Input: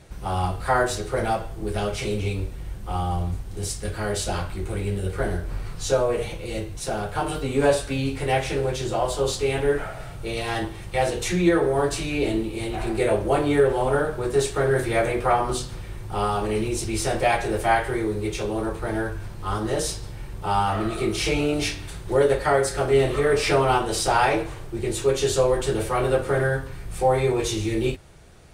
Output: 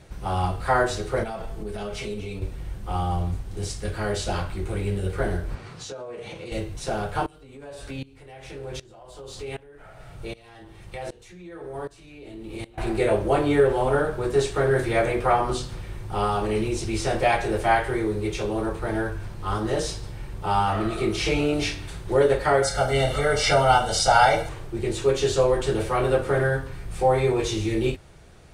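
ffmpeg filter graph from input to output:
-filter_complex "[0:a]asettb=1/sr,asplit=3[a][b][c];[a]atrim=end=1.234[d];[b]atrim=start=1.23:end=2.42,asetpts=PTS-STARTPTS,afade=t=in:d=0.004:c=qsin,afade=t=out:st=1.186:d=0.004:c=qsin,acompressor=threshold=-28dB:ratio=10:attack=3.2:release=140:knee=1:detection=peak,aecho=1:1:4.6:0.39,atrim=end_sample=52479[e];[c]atrim=start=2.416[f];[d][e]acrossfade=d=0.004:c1=hsin:c2=qsin[g];[g][f]acrossfade=d=0.004:c1=qsin:c2=hsin,asettb=1/sr,asplit=3[h][i][j];[h]atrim=end=5.554[k];[i]atrim=start=5.55:end=6.52,asetpts=PTS-STARTPTS,afade=t=in:d=0.004:c=qsin,afade=t=out:st=0.966:d=0.004:c=qsin,highpass=140,lowpass=7.8k,acompressor=threshold=-32dB:ratio=16:attack=3.2:release=140:knee=1:detection=peak[l];[j]atrim=start=6.516[m];[k][l]acrossfade=d=0.004:c1=hsin:c2=qsin[n];[n][m]acrossfade=d=0.004:c1=qsin:c2=hsin,asettb=1/sr,asplit=3[o][p][q];[o]atrim=end=7.264[r];[p]atrim=start=7.26:end=12.78,asetpts=PTS-STARTPTS,afade=t=in:d=0.004:c=qsin,afade=t=out:st=5.516:d=0.004:c=qsin,acompressor=threshold=-27dB:ratio=8:attack=3.2:release=140:knee=1:detection=peak,aeval=exprs='val(0)*pow(10,-21*if(lt(mod(-1.3*n/s,1),2*abs(-1.3)/1000),1-mod(-1.3*n/s,1)/(2*abs(-1.3)/1000),(mod(-1.3*n/s,1)-2*abs(-1.3)/1000)/(1-2*abs(-1.3)/1000))/20)':c=same[s];[q]atrim=start=12.776[t];[r][s]acrossfade=d=0.004:c1=hsin:c2=qsin[u];[u][t]acrossfade=d=0.004:c1=qsin:c2=hsin,asettb=1/sr,asplit=3[v][w][x];[v]atrim=end=22.624[y];[w]atrim=start=22.62:end=24.49,asetpts=PTS-STARTPTS,afade=t=in:d=0.004:c=qsin,afade=t=out:st=1.866:d=0.004:c=qsin,asuperstop=centerf=2500:order=20:qfactor=7.2,bass=f=250:g=-3,treble=f=4k:g=6,aecho=1:1:1.4:0.77,atrim=end_sample=82467[z];[x]atrim=start=24.486[aa];[y][z]acrossfade=d=0.004:c1=hsin:c2=qsin[ab];[ab][aa]acrossfade=d=0.004:c1=qsin:c2=hsin,acrossover=split=8100[ac][ad];[ad]acompressor=threshold=-45dB:ratio=4:attack=1:release=60[ae];[ac][ae]amix=inputs=2:normalize=0,highshelf=f=8.6k:g=-5.5"

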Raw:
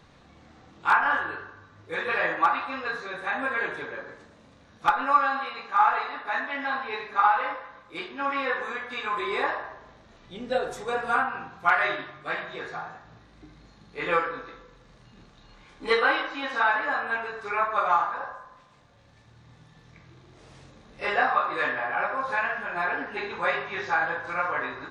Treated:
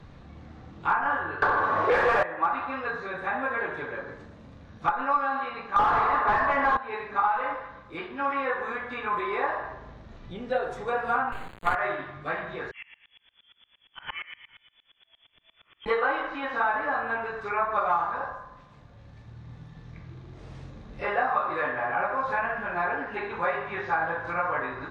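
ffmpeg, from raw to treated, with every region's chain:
-filter_complex "[0:a]asettb=1/sr,asplit=3[a][b][c];[a]atrim=end=1.424[d];[b]atrim=start=1.42:end=2.23,asetpts=PTS-STARTPTS,afade=t=in:d=0.004:c=qsin,afade=t=out:st=0.806:d=0.004:c=qsin,aeval=exprs='val(0)+0.00112*sin(2*PI*1100*n/s)':c=same,equalizer=f=690:w=0.47:g=11.5,asplit=2[e][f];[f]highpass=f=720:p=1,volume=33dB,asoftclip=type=tanh:threshold=-7dB[g];[e][g]amix=inputs=2:normalize=0,lowpass=f=5.3k:p=1,volume=-6dB[h];[c]atrim=start=2.226[i];[d][h]acrossfade=d=0.004:c1=hsin:c2=qsin[j];[j][i]acrossfade=d=0.004:c1=qsin:c2=hsin,asettb=1/sr,asplit=3[k][l][m];[k]atrim=end=5.764[n];[l]atrim=start=5.76:end=6.77,asetpts=PTS-STARTPTS,afade=t=in:d=0.004:c=qsin,afade=t=out:st=1.006:d=0.004:c=qsin,equalizer=f=1.1k:w=6:g=7.5,asplit=2[o][p];[p]highpass=f=720:p=1,volume=28dB,asoftclip=type=tanh:threshold=-6dB[q];[o][q]amix=inputs=2:normalize=0,lowpass=f=1.5k:p=1,volume=-6dB[r];[m]atrim=start=6.766[s];[n][r]acrossfade=d=0.004:c1=hsin:c2=qsin[t];[t][s]acrossfade=d=0.004:c1=qsin:c2=hsin,asettb=1/sr,asplit=3[u][v][w];[u]atrim=end=11.324[x];[v]atrim=start=11.32:end=11.75,asetpts=PTS-STARTPTS,afade=t=in:d=0.004:c=qsin,afade=t=out:st=0.426:d=0.004:c=qsin,bass=f=250:g=-2,treble=f=4k:g=3,acrusher=bits=4:dc=4:mix=0:aa=0.000001,asuperstop=centerf=5500:order=8:qfactor=2.8[y];[w]atrim=start=11.746[z];[x][y]acrossfade=d=0.004:c1=hsin:c2=qsin[aa];[aa][z]acrossfade=d=0.004:c1=qsin:c2=hsin,asettb=1/sr,asplit=3[ab][ac][ad];[ab]atrim=end=12.714[ae];[ac]atrim=start=12.71:end=15.86,asetpts=PTS-STARTPTS,afade=t=in:d=0.004:c=qsin,afade=t=out:st=3.146:d=0.004:c=qsin,lowpass=f=3k:t=q:w=0.5098,lowpass=f=3k:t=q:w=0.6013,lowpass=f=3k:t=q:w=0.9,lowpass=f=3k:t=q:w=2.563,afreqshift=-3500,aeval=exprs='val(0)*pow(10,-27*if(lt(mod(-8.6*n/s,1),2*abs(-8.6)/1000),1-mod(-8.6*n/s,1)/(2*abs(-8.6)/1000),(mod(-8.6*n/s,1)-2*abs(-8.6)/1000)/(1-2*abs(-8.6)/1000))/20)':c=same[af];[ad]atrim=start=15.856[ag];[ae][af]acrossfade=d=0.004:c1=hsin:c2=qsin[ah];[ah][ag]acrossfade=d=0.004:c1=qsin:c2=hsin,aemphasis=mode=reproduction:type=50kf,acrossover=split=460|1300|2700[ai][aj][ak][al];[ai]acompressor=threshold=-46dB:ratio=4[am];[aj]acompressor=threshold=-26dB:ratio=4[an];[ak]acompressor=threshold=-37dB:ratio=4[ao];[al]acompressor=threshold=-57dB:ratio=4[ap];[am][an][ao][ap]amix=inputs=4:normalize=0,lowshelf=f=200:g=11,volume=2dB"

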